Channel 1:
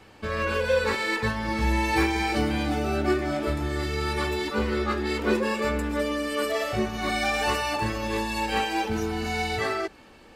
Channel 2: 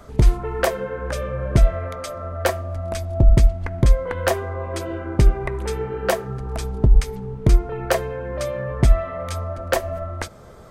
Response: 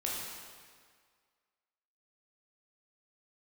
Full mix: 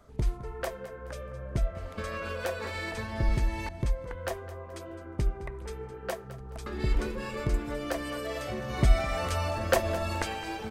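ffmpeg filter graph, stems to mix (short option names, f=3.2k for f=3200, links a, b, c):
-filter_complex "[0:a]acompressor=threshold=-32dB:ratio=6,adelay=1750,volume=-1.5dB,asplit=3[a][b][c];[a]atrim=end=3.69,asetpts=PTS-STARTPTS,afade=t=out:st=3.686:d=0.004:c=hsin[d];[b]atrim=start=3.69:end=6.66,asetpts=PTS-STARTPTS,volume=0[e];[c]atrim=start=6.66,asetpts=PTS-STARTPTS,afade=t=in:d=0.004:c=hsin[f];[d][e][f]concat=n=3:v=0:a=1,asplit=2[g][h];[h]volume=-13.5dB[i];[1:a]volume=-4dB,afade=t=in:st=8.46:d=0.78:silence=0.316228,asplit=2[j][k];[k]volume=-15.5dB[l];[i][l]amix=inputs=2:normalize=0,aecho=0:1:212|424|636|848|1060:1|0.34|0.116|0.0393|0.0134[m];[g][j][m]amix=inputs=3:normalize=0"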